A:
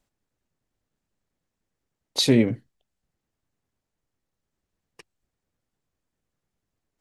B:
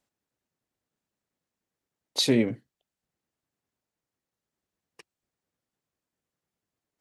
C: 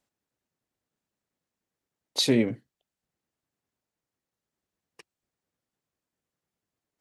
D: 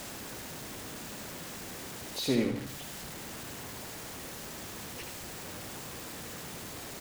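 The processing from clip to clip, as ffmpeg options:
ffmpeg -i in.wav -af "highpass=frequency=180:poles=1,volume=-2.5dB" out.wav
ffmpeg -i in.wav -af anull out.wav
ffmpeg -i in.wav -filter_complex "[0:a]aeval=exprs='val(0)+0.5*0.0376*sgn(val(0))':channel_layout=same,aecho=1:1:75|150|225|300|375:0.447|0.183|0.0751|0.0308|0.0126,acrossover=split=940[link_01][link_02];[link_02]asoftclip=type=hard:threshold=-25.5dB[link_03];[link_01][link_03]amix=inputs=2:normalize=0,volume=-7.5dB" out.wav

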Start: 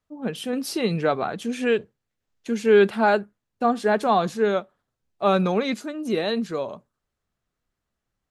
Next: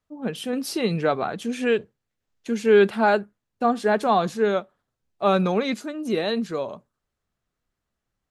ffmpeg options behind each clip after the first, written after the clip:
ffmpeg -i in.wav -af anull out.wav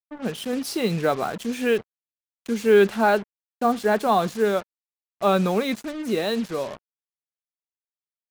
ffmpeg -i in.wav -af "acrusher=bits=5:mix=0:aa=0.5" out.wav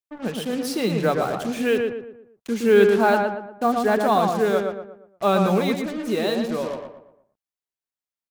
ffmpeg -i in.wav -filter_complex "[0:a]asplit=2[link_01][link_02];[link_02]adelay=117,lowpass=frequency=2000:poles=1,volume=-3.5dB,asplit=2[link_03][link_04];[link_04]adelay=117,lowpass=frequency=2000:poles=1,volume=0.42,asplit=2[link_05][link_06];[link_06]adelay=117,lowpass=frequency=2000:poles=1,volume=0.42,asplit=2[link_07][link_08];[link_08]adelay=117,lowpass=frequency=2000:poles=1,volume=0.42,asplit=2[link_09][link_10];[link_10]adelay=117,lowpass=frequency=2000:poles=1,volume=0.42[link_11];[link_01][link_03][link_05][link_07][link_09][link_11]amix=inputs=6:normalize=0" out.wav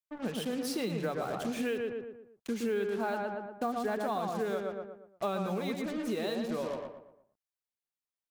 ffmpeg -i in.wav -af "acompressor=threshold=-25dB:ratio=6,volume=-5dB" out.wav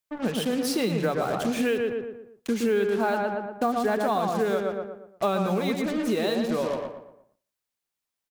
ffmpeg -i in.wav -af "aecho=1:1:171:0.0668,volume=8dB" out.wav

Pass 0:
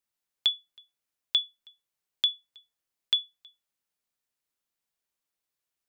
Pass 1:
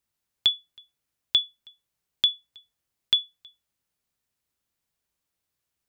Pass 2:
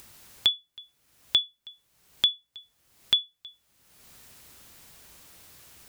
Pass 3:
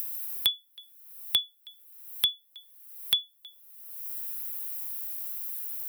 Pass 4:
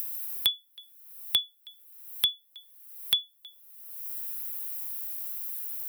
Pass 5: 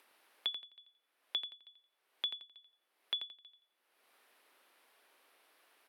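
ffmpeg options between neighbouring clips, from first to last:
ffmpeg -i in.wav -af "equalizer=frequency=72:width_type=o:width=2.9:gain=11,volume=3.5dB" out.wav
ffmpeg -i in.wav -af "acompressor=mode=upward:threshold=-26dB:ratio=2.5,volume=-1dB" out.wav
ffmpeg -i in.wav -filter_complex "[0:a]acrossover=split=250|1400|2300[link_01][link_02][link_03][link_04];[link_01]aeval=exprs='val(0)*gte(abs(val(0)),0.00211)':channel_layout=same[link_05];[link_04]aexciter=amount=10.9:drive=4.5:freq=9700[link_06];[link_05][link_02][link_03][link_06]amix=inputs=4:normalize=0,volume=-3dB" out.wav
ffmpeg -i in.wav -af anull out.wav
ffmpeg -i in.wav -filter_complex "[0:a]highpass=340,lowpass=2800,asplit=2[link_01][link_02];[link_02]aecho=0:1:86|172|258:0.316|0.0885|0.0248[link_03];[link_01][link_03]amix=inputs=2:normalize=0,volume=-6dB" out.wav

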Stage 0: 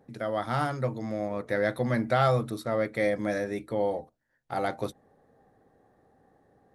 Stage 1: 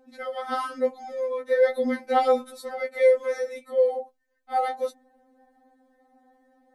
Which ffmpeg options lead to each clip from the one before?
ffmpeg -i in.wav -af "afftfilt=real='re*3.46*eq(mod(b,12),0)':imag='im*3.46*eq(mod(b,12),0)':win_size=2048:overlap=0.75,volume=3dB" out.wav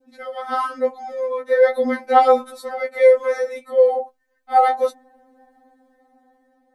ffmpeg -i in.wav -af "adynamicequalizer=threshold=0.0178:dfrequency=1000:dqfactor=0.76:tfrequency=1000:tqfactor=0.76:attack=5:release=100:ratio=0.375:range=4:mode=boostabove:tftype=bell,dynaudnorm=framelen=490:gausssize=5:maxgain=6.5dB" out.wav

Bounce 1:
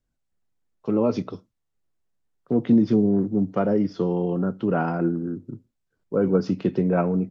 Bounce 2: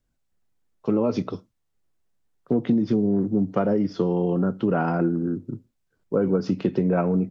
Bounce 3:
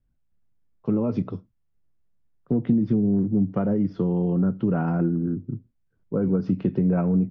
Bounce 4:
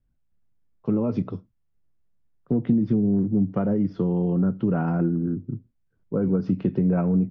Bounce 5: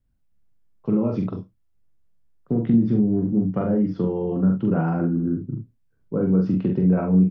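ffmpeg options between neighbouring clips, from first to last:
ffmpeg -i in.wav -af "acompressor=threshold=-21dB:ratio=6,volume=3.5dB" out.wav
ffmpeg -i in.wav -af "bass=frequency=250:gain=11,treble=frequency=4000:gain=-14,volume=-6dB" out.wav
ffmpeg -i in.wav -af anull out.wav
ffmpeg -i in.wav -af "aecho=1:1:43|70:0.668|0.282" out.wav

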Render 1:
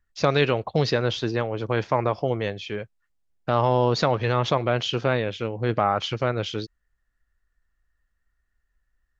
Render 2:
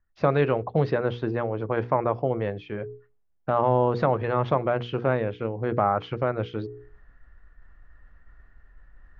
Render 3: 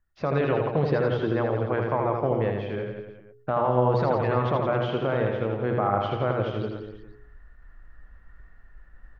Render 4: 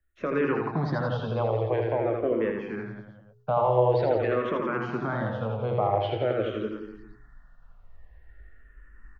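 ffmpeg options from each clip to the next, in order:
ffmpeg -i in.wav -af "lowpass=1500,bandreject=frequency=60:width_type=h:width=6,bandreject=frequency=120:width_type=h:width=6,bandreject=frequency=180:width_type=h:width=6,bandreject=frequency=240:width_type=h:width=6,bandreject=frequency=300:width_type=h:width=6,bandreject=frequency=360:width_type=h:width=6,bandreject=frequency=420:width_type=h:width=6,bandreject=frequency=480:width_type=h:width=6,areverse,acompressor=mode=upward:threshold=-30dB:ratio=2.5,areverse" out.wav
ffmpeg -i in.wav -filter_complex "[0:a]alimiter=limit=-14dB:level=0:latency=1:release=37,asplit=2[link_01][link_02];[link_02]aecho=0:1:80|168|264.8|371.3|488.4:0.631|0.398|0.251|0.158|0.1[link_03];[link_01][link_03]amix=inputs=2:normalize=0" out.wav
ffmpeg -i in.wav -filter_complex "[0:a]asplit=2[link_01][link_02];[link_02]adelay=18,volume=-13.5dB[link_03];[link_01][link_03]amix=inputs=2:normalize=0,acrossover=split=150|540[link_04][link_05][link_06];[link_04]asoftclip=type=tanh:threshold=-33.5dB[link_07];[link_07][link_05][link_06]amix=inputs=3:normalize=0,asplit=2[link_08][link_09];[link_09]afreqshift=-0.47[link_10];[link_08][link_10]amix=inputs=2:normalize=1,volume=1.5dB" out.wav

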